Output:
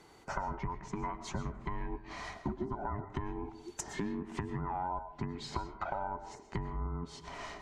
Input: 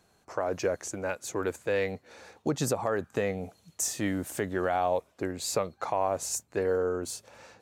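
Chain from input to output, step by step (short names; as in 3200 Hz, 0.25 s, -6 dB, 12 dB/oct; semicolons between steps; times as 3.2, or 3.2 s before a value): band inversion scrambler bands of 500 Hz; treble ducked by the level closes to 1100 Hz, closed at -27 dBFS; high shelf 8100 Hz -11.5 dB; compressor 6:1, threshold -43 dBFS, peak gain reduction 18 dB; notches 50/100 Hz; on a send: reverb RT60 0.70 s, pre-delay 80 ms, DRR 11 dB; on the sum: gain +8 dB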